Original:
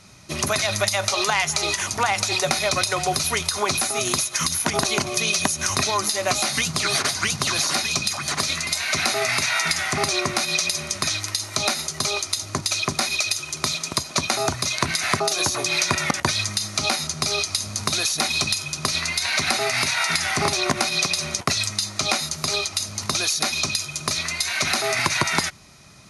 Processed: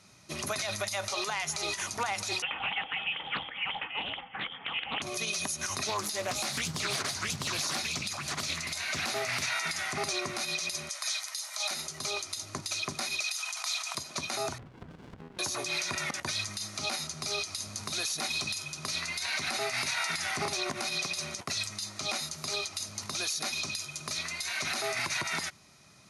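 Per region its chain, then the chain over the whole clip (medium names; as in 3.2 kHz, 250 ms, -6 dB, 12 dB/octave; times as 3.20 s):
2.42–5.02 s: frequency inversion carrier 3.3 kHz + loudspeaker Doppler distortion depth 0.45 ms
5.87–9.52 s: bass shelf 130 Hz +8.5 dB + loudspeaker Doppler distortion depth 0.37 ms
10.89–11.71 s: steep high-pass 590 Hz + tilt EQ +1.5 dB/octave + band-stop 2.7 kHz, Q 13
13.24–13.95 s: brick-wall FIR high-pass 640 Hz + level flattener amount 50%
14.58–15.39 s: brick-wall FIR low-pass 1.9 kHz + compression 5:1, threshold -29 dBFS + sliding maximum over 65 samples
whole clip: high-pass 120 Hz 6 dB/octave; peak limiter -13 dBFS; trim -8.5 dB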